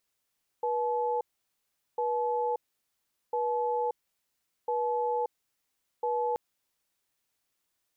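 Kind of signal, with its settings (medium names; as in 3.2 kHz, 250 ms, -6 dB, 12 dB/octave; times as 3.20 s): cadence 484 Hz, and 861 Hz, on 0.58 s, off 0.77 s, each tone -29 dBFS 5.73 s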